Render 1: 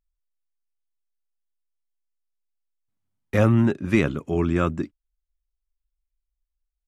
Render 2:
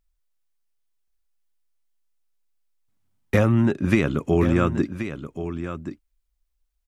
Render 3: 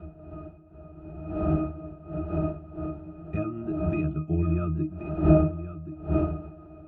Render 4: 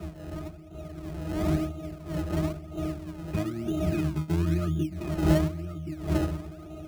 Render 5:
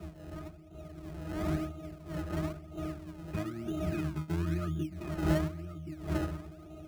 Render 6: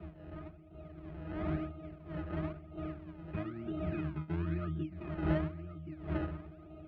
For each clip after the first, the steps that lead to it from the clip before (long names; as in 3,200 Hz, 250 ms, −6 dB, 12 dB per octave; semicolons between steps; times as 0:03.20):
downward compressor, threshold −22 dBFS, peak gain reduction 9 dB; on a send: single-tap delay 1,078 ms −10.5 dB; on the sum: level +7 dB
wind on the microphone 600 Hz −23 dBFS; resonances in every octave D#, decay 0.19 s; level +3 dB
in parallel at −4.5 dB: sample-and-hold swept by an LFO 26×, swing 100% 1 Hz; on the sum: multiband upward and downward compressor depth 40%; level −4 dB
dynamic equaliser 1,500 Hz, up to +5 dB, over −50 dBFS, Q 1.3; level −6.5 dB
low-pass filter 3,000 Hz 24 dB per octave; level −3 dB